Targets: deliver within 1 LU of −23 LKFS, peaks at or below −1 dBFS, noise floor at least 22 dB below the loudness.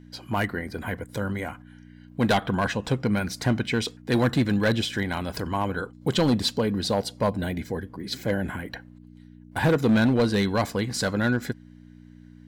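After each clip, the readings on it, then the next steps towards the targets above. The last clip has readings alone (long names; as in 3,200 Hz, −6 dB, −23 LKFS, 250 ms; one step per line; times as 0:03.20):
share of clipped samples 1.3%; peaks flattened at −15.5 dBFS; mains hum 60 Hz; hum harmonics up to 300 Hz; level of the hum −48 dBFS; integrated loudness −26.0 LKFS; sample peak −15.5 dBFS; target loudness −23.0 LKFS
→ clipped peaks rebuilt −15.5 dBFS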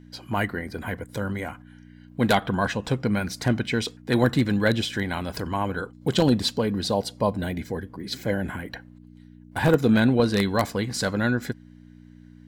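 share of clipped samples 0.0%; mains hum 60 Hz; hum harmonics up to 300 Hz; level of the hum −48 dBFS
→ hum removal 60 Hz, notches 5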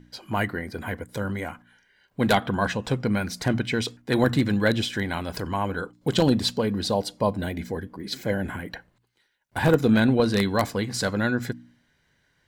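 mains hum none found; integrated loudness −25.0 LKFS; sample peak −6.0 dBFS; target loudness −23.0 LKFS
→ level +2 dB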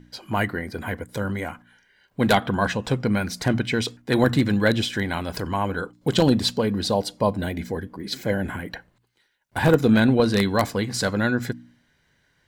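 integrated loudness −23.0 LKFS; sample peak −4.0 dBFS; background noise floor −66 dBFS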